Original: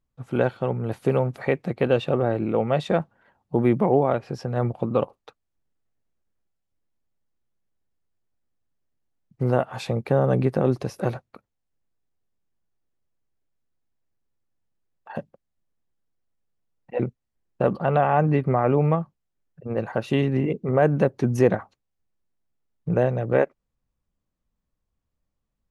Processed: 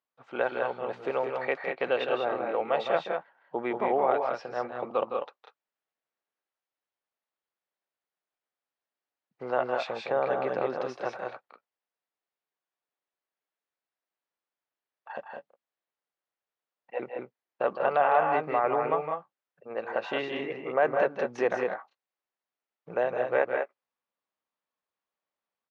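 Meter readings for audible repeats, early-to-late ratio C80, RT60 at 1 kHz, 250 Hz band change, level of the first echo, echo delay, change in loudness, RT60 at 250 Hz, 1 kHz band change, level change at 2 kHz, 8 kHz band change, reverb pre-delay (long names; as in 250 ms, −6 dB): 2, no reverb audible, no reverb audible, −14.0 dB, −8.0 dB, 161 ms, −6.0 dB, no reverb audible, −0.5 dB, +0.5 dB, can't be measured, no reverb audible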